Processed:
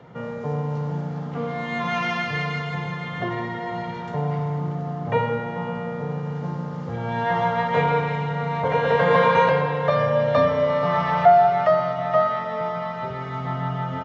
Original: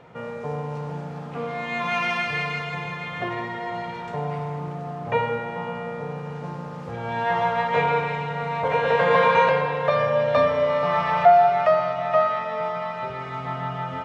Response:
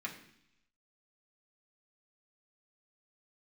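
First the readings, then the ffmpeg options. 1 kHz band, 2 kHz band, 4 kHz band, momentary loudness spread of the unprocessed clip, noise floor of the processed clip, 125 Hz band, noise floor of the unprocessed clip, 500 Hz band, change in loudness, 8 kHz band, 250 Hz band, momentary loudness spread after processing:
0.0 dB, −1.0 dB, −0.5 dB, 15 LU, −32 dBFS, +6.0 dB, −34 dBFS, +0.5 dB, +0.5 dB, can't be measured, +5.5 dB, 12 LU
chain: -filter_complex "[0:a]highpass=85,bandreject=frequency=2500:width=7.8,acrossover=split=290|700|2100[link_01][link_02][link_03][link_04];[link_01]acontrast=70[link_05];[link_05][link_02][link_03][link_04]amix=inputs=4:normalize=0,aresample=16000,aresample=44100"

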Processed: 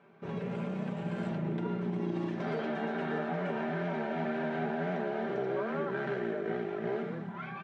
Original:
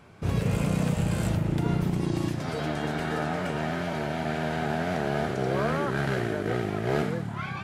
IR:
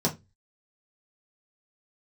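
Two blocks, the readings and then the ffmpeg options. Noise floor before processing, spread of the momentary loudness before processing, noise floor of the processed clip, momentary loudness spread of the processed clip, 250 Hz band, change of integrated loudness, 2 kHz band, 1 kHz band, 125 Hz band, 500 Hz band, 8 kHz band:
−35 dBFS, 4 LU, −42 dBFS, 3 LU, −5.5 dB, −6.5 dB, −6.5 dB, −6.0 dB, −11.0 dB, −3.5 dB, below −20 dB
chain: -filter_complex "[0:a]dynaudnorm=framelen=520:gausssize=7:maxgain=11.5dB,highpass=220,lowpass=2500,aecho=1:1:5.1:0.55,acompressor=threshold=-25dB:ratio=6,asplit=2[link_01][link_02];[1:a]atrim=start_sample=2205[link_03];[link_02][link_03]afir=irnorm=-1:irlink=0,volume=-21dB[link_04];[link_01][link_04]amix=inputs=2:normalize=0,volume=-8.5dB"

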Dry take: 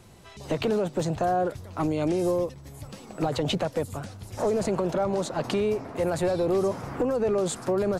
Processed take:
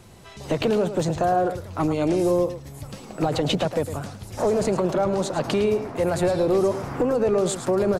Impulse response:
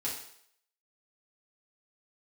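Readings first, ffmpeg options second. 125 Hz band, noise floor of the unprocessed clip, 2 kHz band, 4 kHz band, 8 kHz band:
+3.5 dB, −47 dBFS, +4.0 dB, +4.0 dB, +4.0 dB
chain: -af "aecho=1:1:108:0.299,volume=3.5dB"

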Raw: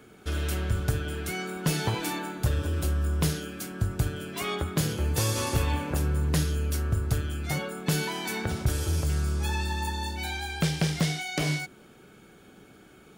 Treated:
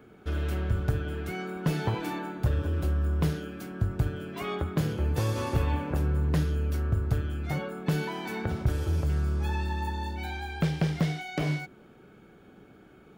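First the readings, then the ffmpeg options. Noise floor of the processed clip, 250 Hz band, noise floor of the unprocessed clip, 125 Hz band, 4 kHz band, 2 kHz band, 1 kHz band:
−54 dBFS, 0.0 dB, −53 dBFS, 0.0 dB, −8.5 dB, −4.0 dB, −1.5 dB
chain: -af "equalizer=frequency=9200:width=0.34:gain=-15"

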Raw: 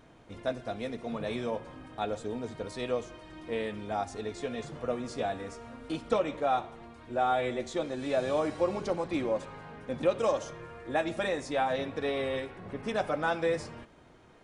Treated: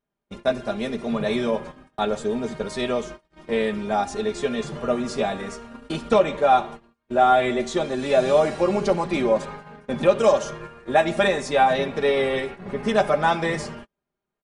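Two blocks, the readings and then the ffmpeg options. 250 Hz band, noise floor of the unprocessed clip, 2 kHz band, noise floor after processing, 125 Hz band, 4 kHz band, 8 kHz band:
+9.5 dB, −56 dBFS, +9.5 dB, −84 dBFS, +8.5 dB, +10.0 dB, +10.0 dB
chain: -af "agate=range=-37dB:threshold=-44dB:ratio=16:detection=peak,aecho=1:1:5:0.65,volume=8.5dB"

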